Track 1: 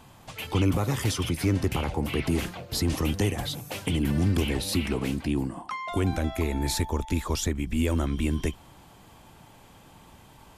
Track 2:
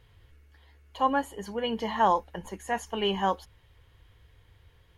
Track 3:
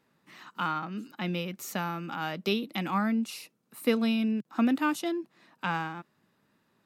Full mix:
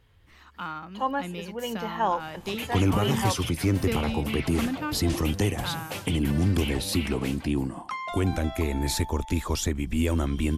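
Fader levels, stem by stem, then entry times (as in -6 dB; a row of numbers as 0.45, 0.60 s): +0.5, -2.5, -4.5 dB; 2.20, 0.00, 0.00 s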